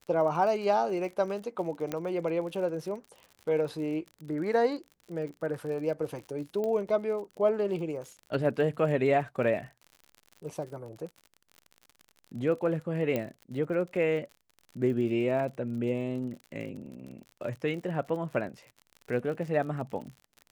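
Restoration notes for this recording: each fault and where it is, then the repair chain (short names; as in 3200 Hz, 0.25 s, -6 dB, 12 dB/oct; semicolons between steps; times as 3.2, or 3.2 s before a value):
crackle 55/s -39 dBFS
1.92 pop -18 dBFS
6.64 pop -22 dBFS
13.16 pop -17 dBFS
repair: de-click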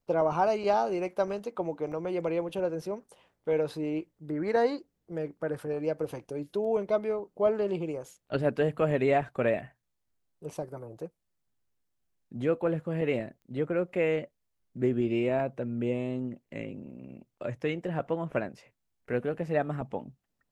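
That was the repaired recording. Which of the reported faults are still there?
1.92 pop
6.64 pop
13.16 pop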